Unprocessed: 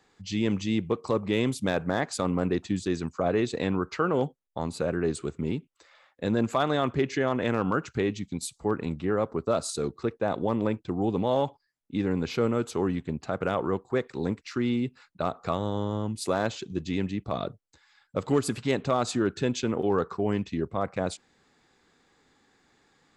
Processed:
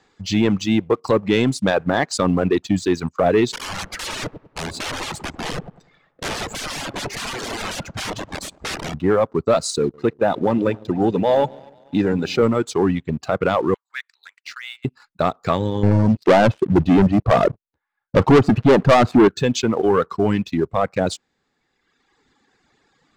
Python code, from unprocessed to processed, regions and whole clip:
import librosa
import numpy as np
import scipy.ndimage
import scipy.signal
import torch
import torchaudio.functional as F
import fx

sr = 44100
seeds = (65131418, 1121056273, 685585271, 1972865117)

y = fx.chain(x, sr, fx.overflow_wrap(gain_db=31.5),
    fx.echo_wet_lowpass(ms=97, feedback_pct=57, hz=970.0, wet_db=-4.5), at=(3.52, 8.94))
y = fx.chain(y, sr, fx.notch_comb(f0_hz=1100.0),
    fx.echo_split(split_hz=640.0, low_ms=147, high_ms=242, feedback_pct=52, wet_db=-13.5), at=(9.79, 12.43))
y = fx.chain(y, sr, fx.highpass(hz=1500.0, slope=24),
    fx.high_shelf(hz=4100.0, db=-8.0),
    fx.transient(attack_db=-1, sustain_db=-7), at=(13.74, 14.85))
y = fx.chain(y, sr, fx.lowpass(hz=1300.0, slope=12),
    fx.leveller(passes=3), at=(15.83, 19.28))
y = scipy.signal.sosfilt(scipy.signal.butter(2, 7500.0, 'lowpass', fs=sr, output='sos'), y)
y = fx.dereverb_blind(y, sr, rt60_s=1.5)
y = fx.leveller(y, sr, passes=1)
y = F.gain(torch.from_numpy(y), 7.5).numpy()